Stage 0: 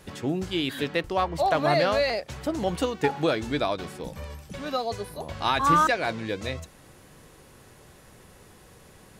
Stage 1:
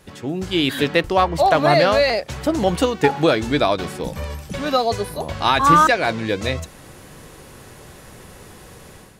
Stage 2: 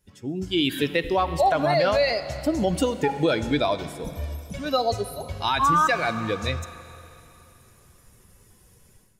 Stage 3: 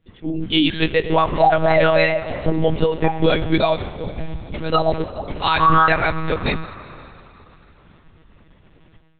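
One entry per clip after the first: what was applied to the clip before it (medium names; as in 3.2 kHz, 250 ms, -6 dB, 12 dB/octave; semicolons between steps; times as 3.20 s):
level rider gain up to 10 dB
expander on every frequency bin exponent 1.5; Schroeder reverb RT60 3 s, combs from 32 ms, DRR 14 dB; peak limiter -12.5 dBFS, peak gain reduction 8 dB
monotone LPC vocoder at 8 kHz 160 Hz; trim +6 dB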